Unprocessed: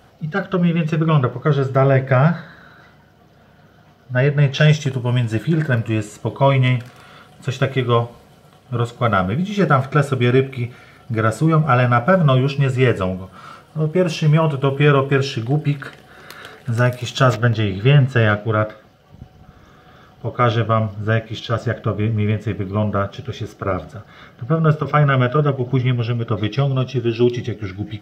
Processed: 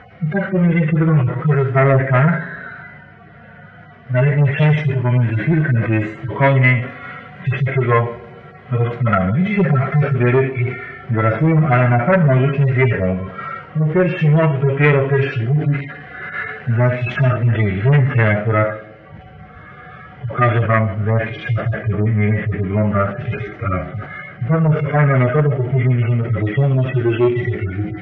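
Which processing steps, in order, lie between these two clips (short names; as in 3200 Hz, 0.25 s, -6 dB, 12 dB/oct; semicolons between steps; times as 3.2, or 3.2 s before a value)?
median-filter separation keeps harmonic; in parallel at +1.5 dB: compressor, threshold -28 dBFS, peak gain reduction 18 dB; on the sum: added harmonics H 5 -15 dB, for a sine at -1 dBFS; synth low-pass 2000 Hz, resonance Q 4.4; on a send: narrowing echo 0.14 s, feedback 63%, band-pass 320 Hz, level -15.5 dB; on the sum: sustainer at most 110 dB/s; gain -3.5 dB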